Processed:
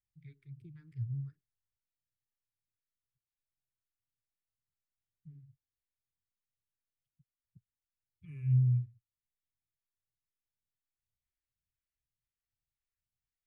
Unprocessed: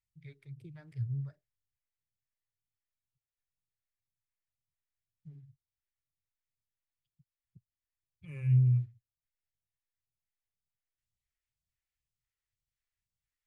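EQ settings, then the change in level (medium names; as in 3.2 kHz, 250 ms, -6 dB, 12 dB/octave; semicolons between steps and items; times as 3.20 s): dynamic bell 1.5 kHz, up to -5 dB, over -60 dBFS, Q 1.2; Butterworth band-stop 660 Hz, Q 0.72; treble shelf 2 kHz -10 dB; -2.0 dB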